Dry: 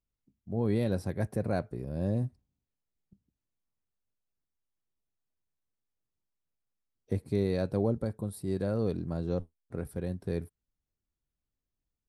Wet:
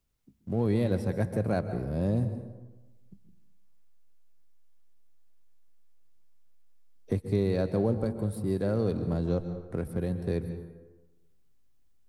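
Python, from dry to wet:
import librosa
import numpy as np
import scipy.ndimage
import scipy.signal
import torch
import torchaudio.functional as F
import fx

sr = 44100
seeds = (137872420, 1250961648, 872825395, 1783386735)

p1 = fx.backlash(x, sr, play_db=-40.5)
p2 = x + F.gain(torch.from_numpy(p1), -3.5).numpy()
p3 = fx.rev_plate(p2, sr, seeds[0], rt60_s=0.91, hf_ratio=0.6, predelay_ms=115, drr_db=10.5)
p4 = fx.band_squash(p3, sr, depth_pct=40)
y = F.gain(torch.from_numpy(p4), -2.0).numpy()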